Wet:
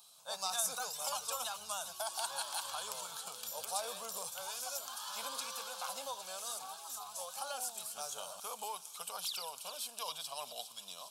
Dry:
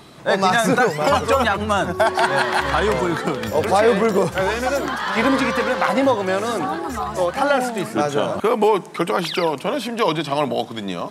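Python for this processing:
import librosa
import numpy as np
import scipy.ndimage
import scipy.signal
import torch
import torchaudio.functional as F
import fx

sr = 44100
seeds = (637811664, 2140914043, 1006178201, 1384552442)

y = np.diff(x, prepend=0.0)
y = fx.fixed_phaser(y, sr, hz=800.0, stages=4)
y = fx.echo_wet_highpass(y, sr, ms=406, feedback_pct=70, hz=2600.0, wet_db=-10)
y = y * librosa.db_to_amplitude(-4.0)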